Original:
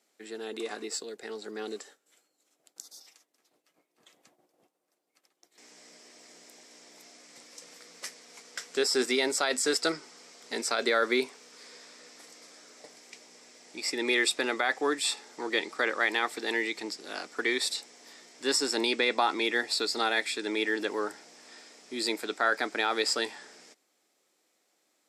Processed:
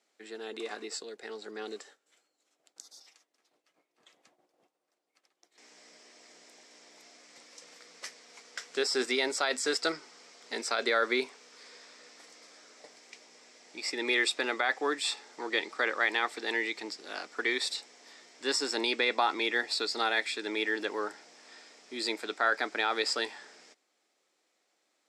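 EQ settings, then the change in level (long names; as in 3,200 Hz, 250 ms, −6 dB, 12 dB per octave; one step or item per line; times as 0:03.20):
high-frequency loss of the air 54 metres
low-shelf EQ 310 Hz −8 dB
0.0 dB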